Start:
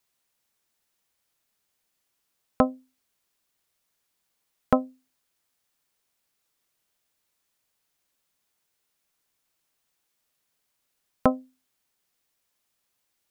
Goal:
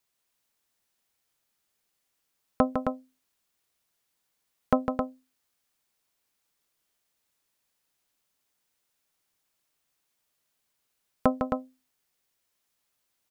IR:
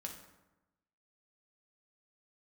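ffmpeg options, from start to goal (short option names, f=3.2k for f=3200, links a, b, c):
-af "aecho=1:1:154.5|265.3:0.447|0.501,volume=-2.5dB"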